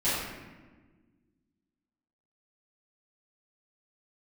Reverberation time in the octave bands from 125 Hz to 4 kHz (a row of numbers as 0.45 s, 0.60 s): 2.0 s, 2.2 s, 1.5 s, 1.2 s, 1.2 s, 0.80 s